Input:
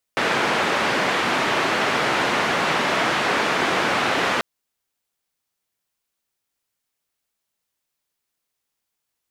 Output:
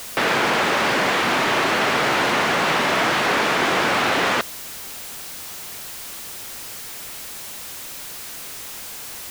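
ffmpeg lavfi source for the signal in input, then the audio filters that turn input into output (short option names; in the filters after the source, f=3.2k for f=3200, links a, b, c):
-f lavfi -i "anoisesrc=c=white:d=4.24:r=44100:seed=1,highpass=f=180,lowpass=f=1900,volume=-5.6dB"
-af "aeval=exprs='val(0)+0.5*0.0398*sgn(val(0))':c=same"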